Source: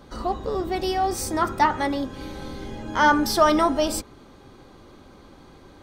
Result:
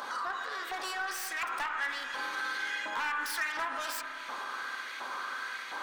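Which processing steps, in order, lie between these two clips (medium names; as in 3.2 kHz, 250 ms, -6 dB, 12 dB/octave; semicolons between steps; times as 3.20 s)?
self-modulated delay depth 0.24 ms; in parallel at +2 dB: upward compressor, threshold -26 dBFS; on the sum: LFO high-pass saw up 1.4 Hz 870–2200 Hz; compression 12:1, threshold -17 dBFS, peak gain reduction 13 dB; hard clipper -16 dBFS, distortion -14 dB; peak limiter -26.5 dBFS, peak gain reduction 10.5 dB; graphic EQ with 31 bands 250 Hz +5 dB, 800 Hz -4 dB, 1.6 kHz +6 dB; on a send at -5 dB: reverberation RT60 3.7 s, pre-delay 30 ms; on the sum: trim -3 dB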